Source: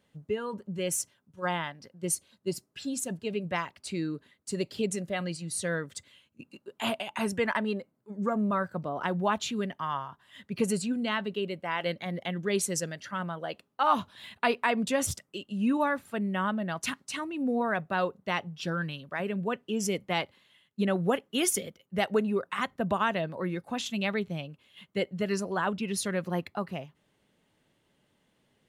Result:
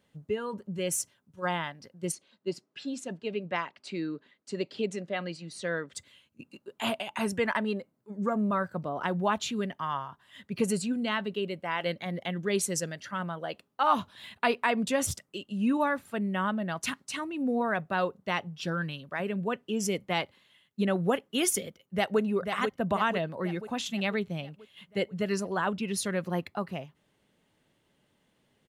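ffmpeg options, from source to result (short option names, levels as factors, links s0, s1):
-filter_complex "[0:a]asplit=3[s0][s1][s2];[s0]afade=t=out:st=2.11:d=0.02[s3];[s1]highpass=210,lowpass=4500,afade=t=in:st=2.11:d=0.02,afade=t=out:st=5.92:d=0.02[s4];[s2]afade=t=in:st=5.92:d=0.02[s5];[s3][s4][s5]amix=inputs=3:normalize=0,asplit=2[s6][s7];[s7]afade=t=in:st=21.68:d=0.01,afade=t=out:st=22.2:d=0.01,aecho=0:1:490|980|1470|1960|2450|2940|3430:0.501187|0.275653|0.151609|0.083385|0.0458618|0.025224|0.0138732[s8];[s6][s8]amix=inputs=2:normalize=0"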